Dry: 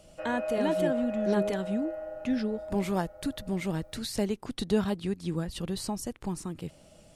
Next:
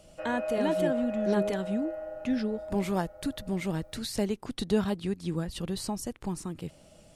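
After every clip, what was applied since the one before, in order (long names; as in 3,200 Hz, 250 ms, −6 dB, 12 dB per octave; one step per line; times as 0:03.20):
no processing that can be heard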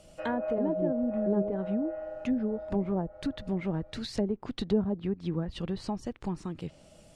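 treble cut that deepens with the level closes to 610 Hz, closed at −24 dBFS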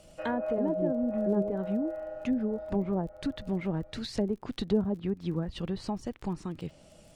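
surface crackle 27 per second −47 dBFS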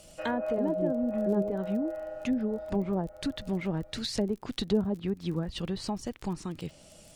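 high-shelf EQ 3,100 Hz +9 dB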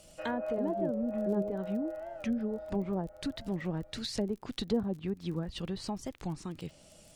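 wow of a warped record 45 rpm, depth 160 cents
level −3.5 dB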